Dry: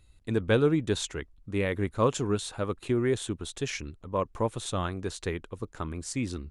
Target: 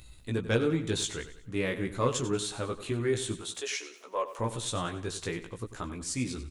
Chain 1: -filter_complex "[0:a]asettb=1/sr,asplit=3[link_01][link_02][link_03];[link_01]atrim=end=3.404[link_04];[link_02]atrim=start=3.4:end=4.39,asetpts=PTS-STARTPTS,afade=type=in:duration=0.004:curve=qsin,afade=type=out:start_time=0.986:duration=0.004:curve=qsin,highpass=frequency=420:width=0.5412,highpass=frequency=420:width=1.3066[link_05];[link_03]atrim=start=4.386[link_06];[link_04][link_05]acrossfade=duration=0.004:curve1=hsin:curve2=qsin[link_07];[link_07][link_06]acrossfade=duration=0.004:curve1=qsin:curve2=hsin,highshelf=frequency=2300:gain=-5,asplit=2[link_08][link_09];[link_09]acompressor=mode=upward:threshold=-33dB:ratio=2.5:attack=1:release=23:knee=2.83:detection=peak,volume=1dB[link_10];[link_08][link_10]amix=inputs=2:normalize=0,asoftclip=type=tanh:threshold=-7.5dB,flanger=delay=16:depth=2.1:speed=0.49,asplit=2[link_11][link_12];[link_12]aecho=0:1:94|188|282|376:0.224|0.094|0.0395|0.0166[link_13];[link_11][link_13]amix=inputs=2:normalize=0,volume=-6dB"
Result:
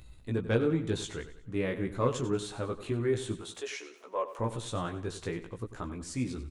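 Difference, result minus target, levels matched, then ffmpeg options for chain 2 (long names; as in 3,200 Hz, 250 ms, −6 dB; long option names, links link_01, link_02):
4,000 Hz band −5.5 dB
-filter_complex "[0:a]asettb=1/sr,asplit=3[link_01][link_02][link_03];[link_01]atrim=end=3.404[link_04];[link_02]atrim=start=3.4:end=4.39,asetpts=PTS-STARTPTS,afade=type=in:duration=0.004:curve=qsin,afade=type=out:start_time=0.986:duration=0.004:curve=qsin,highpass=frequency=420:width=0.5412,highpass=frequency=420:width=1.3066[link_05];[link_03]atrim=start=4.386[link_06];[link_04][link_05]acrossfade=duration=0.004:curve1=hsin:curve2=qsin[link_07];[link_07][link_06]acrossfade=duration=0.004:curve1=qsin:curve2=hsin,highshelf=frequency=2300:gain=5.5,asplit=2[link_08][link_09];[link_09]acompressor=mode=upward:threshold=-33dB:ratio=2.5:attack=1:release=23:knee=2.83:detection=peak,volume=1dB[link_10];[link_08][link_10]amix=inputs=2:normalize=0,asoftclip=type=tanh:threshold=-7.5dB,flanger=delay=16:depth=2.1:speed=0.49,asplit=2[link_11][link_12];[link_12]aecho=0:1:94|188|282|376:0.224|0.094|0.0395|0.0166[link_13];[link_11][link_13]amix=inputs=2:normalize=0,volume=-6dB"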